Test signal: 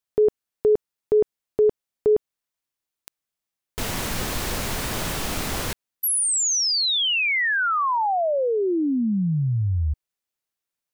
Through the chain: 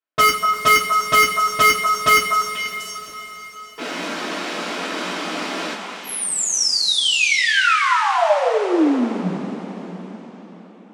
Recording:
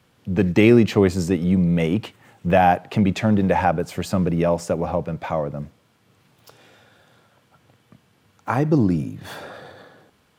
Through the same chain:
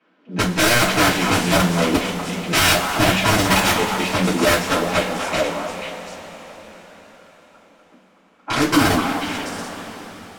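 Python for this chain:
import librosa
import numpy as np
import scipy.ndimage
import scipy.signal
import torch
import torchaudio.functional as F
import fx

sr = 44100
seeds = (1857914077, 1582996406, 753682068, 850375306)

y = scipy.signal.sosfilt(scipy.signal.ellip(6, 1.0, 80, 180.0, 'highpass', fs=sr, output='sos'), x)
y = (np.mod(10.0 ** (14.0 / 20.0) * y + 1.0, 2.0) - 1.0) / 10.0 ** (14.0 / 20.0)
y = fx.env_lowpass(y, sr, base_hz=2300.0, full_db=-17.0)
y = fx.echo_stepped(y, sr, ms=244, hz=1000.0, octaves=1.4, feedback_pct=70, wet_db=-2.5)
y = fx.rev_double_slope(y, sr, seeds[0], early_s=0.22, late_s=4.9, knee_db=-20, drr_db=-9.0)
y = y * librosa.db_to_amplitude(-5.0)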